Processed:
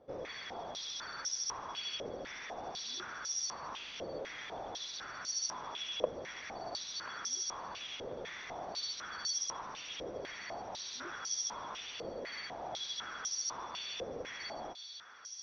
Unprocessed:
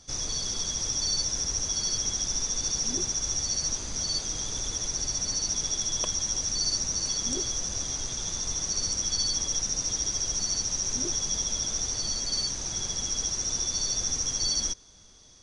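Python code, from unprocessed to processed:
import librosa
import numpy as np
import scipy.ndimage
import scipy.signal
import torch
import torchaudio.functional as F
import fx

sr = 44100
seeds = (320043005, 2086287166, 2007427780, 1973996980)

p1 = fx.air_absorb(x, sr, metres=340.0)
p2 = p1 + fx.echo_thinned(p1, sr, ms=1037, feedback_pct=70, hz=680.0, wet_db=-12.0, dry=0)
p3 = fx.filter_held_bandpass(p2, sr, hz=4.0, low_hz=520.0, high_hz=5600.0)
y = p3 * 10.0 ** (12.5 / 20.0)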